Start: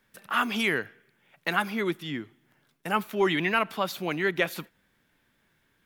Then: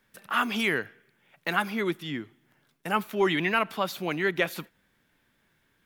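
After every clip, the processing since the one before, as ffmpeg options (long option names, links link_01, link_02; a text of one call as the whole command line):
ffmpeg -i in.wav -af "deesser=0.6" out.wav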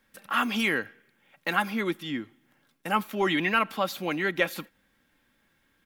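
ffmpeg -i in.wav -af "aecho=1:1:3.7:0.37" out.wav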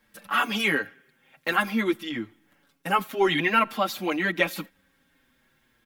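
ffmpeg -i in.wav -filter_complex "[0:a]asplit=2[link_01][link_02];[link_02]adelay=6.3,afreqshift=-0.49[link_03];[link_01][link_03]amix=inputs=2:normalize=1,volume=5.5dB" out.wav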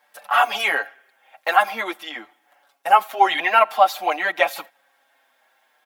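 ffmpeg -i in.wav -af "highpass=frequency=720:width_type=q:width=5.2,volume=2.5dB" out.wav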